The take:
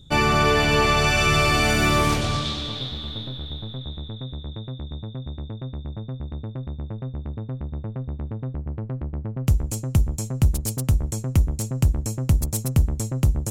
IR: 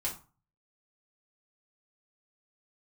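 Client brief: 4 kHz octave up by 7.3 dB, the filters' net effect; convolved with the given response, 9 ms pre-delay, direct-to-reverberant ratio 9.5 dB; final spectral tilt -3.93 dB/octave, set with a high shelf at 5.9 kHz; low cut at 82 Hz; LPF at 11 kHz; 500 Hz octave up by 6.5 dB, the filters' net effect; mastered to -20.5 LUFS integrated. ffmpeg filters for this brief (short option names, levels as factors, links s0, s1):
-filter_complex "[0:a]highpass=82,lowpass=11000,equalizer=f=500:t=o:g=8,equalizer=f=4000:t=o:g=8,highshelf=f=5900:g=3,asplit=2[s0][s1];[1:a]atrim=start_sample=2205,adelay=9[s2];[s1][s2]afir=irnorm=-1:irlink=0,volume=0.237[s3];[s0][s3]amix=inputs=2:normalize=0,volume=0.891"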